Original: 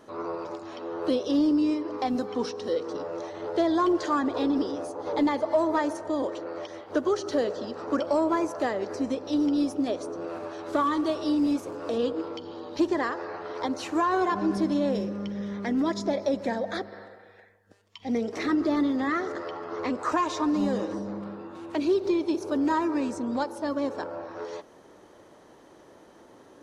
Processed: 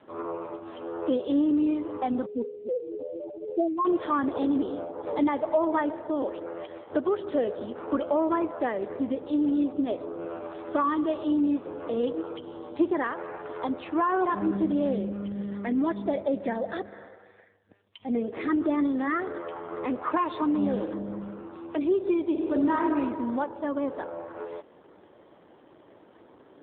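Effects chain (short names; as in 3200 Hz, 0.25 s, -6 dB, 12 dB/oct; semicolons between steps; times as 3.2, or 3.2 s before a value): 2.26–3.85 spectral contrast raised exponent 3.4; 18.39–19.4 dynamic EQ 170 Hz, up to -4 dB, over -48 dBFS, Q 3; 22.25–22.86 reverb throw, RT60 1.8 s, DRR 2 dB; AMR-NB 7.4 kbps 8000 Hz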